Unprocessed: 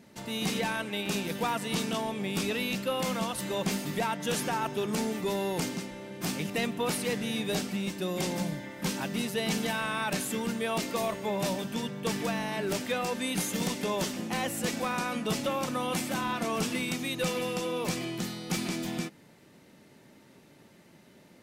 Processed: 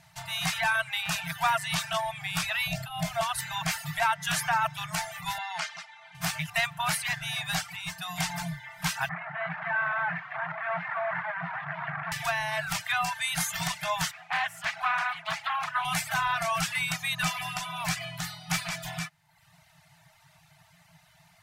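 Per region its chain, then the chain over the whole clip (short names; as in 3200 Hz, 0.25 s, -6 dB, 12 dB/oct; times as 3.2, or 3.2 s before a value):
2.67–3.21 resonant low shelf 750 Hz +10.5 dB, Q 3 + compressor 3:1, threshold -20 dBFS
5.38–6.15 BPF 500–5100 Hz + doubler 13 ms -13 dB
9.09–12.12 infinite clipping + elliptic band-pass 160–1900 Hz, stop band 60 dB
14.11–15.85 three-band isolator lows -13 dB, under 450 Hz, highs -13 dB, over 3800 Hz + Doppler distortion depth 0.37 ms
whole clip: FFT band-reject 180–620 Hz; reverb removal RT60 0.74 s; dynamic EQ 1600 Hz, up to +7 dB, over -50 dBFS, Q 1.3; gain +3.5 dB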